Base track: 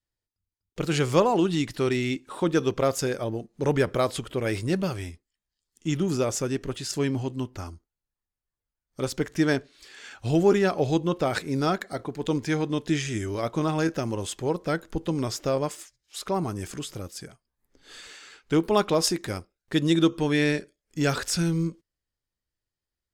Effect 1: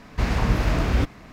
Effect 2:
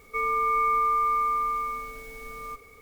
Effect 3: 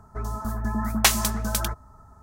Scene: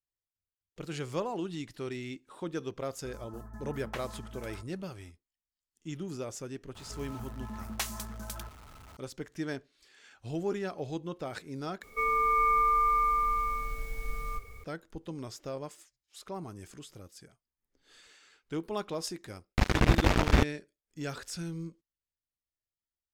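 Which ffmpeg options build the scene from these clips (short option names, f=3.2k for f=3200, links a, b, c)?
-filter_complex "[3:a]asplit=2[a][b];[0:a]volume=-13dB[c];[a]acrossover=split=2800[d][e];[e]acompressor=threshold=-36dB:ratio=4:attack=1:release=60[f];[d][f]amix=inputs=2:normalize=0[g];[b]aeval=exprs='val(0)+0.5*0.0316*sgn(val(0))':c=same[h];[2:a]asubboost=boost=8:cutoff=110[i];[1:a]acrusher=bits=2:mix=0:aa=0.5[j];[c]asplit=2[k][l];[k]atrim=end=11.834[m];[i]atrim=end=2.81,asetpts=PTS-STARTPTS,volume=-1.5dB[n];[l]atrim=start=14.636[o];[g]atrim=end=2.22,asetpts=PTS-STARTPTS,volume=-18dB,afade=t=in:d=0.004:c=hsin,afade=t=out:st=2.216:d=0.004:c=hsin,adelay=2890[p];[h]atrim=end=2.22,asetpts=PTS-STARTPTS,volume=-16.5dB,afade=t=in:d=0.004:c=hsin,afade=t=out:st=2.216:d=0.004:c=hsin,adelay=6750[q];[j]atrim=end=1.32,asetpts=PTS-STARTPTS,volume=-2.5dB,afade=t=in:d=0.004:c=hsin,afade=t=out:st=1.316:d=0.004:c=hsin,adelay=19390[r];[m][n]acrossfade=d=0.004:c1=hsin:c2=hsin[s];[s][o]acrossfade=d=0.004:c1=hsin:c2=hsin[t];[t][p][q][r]amix=inputs=4:normalize=0"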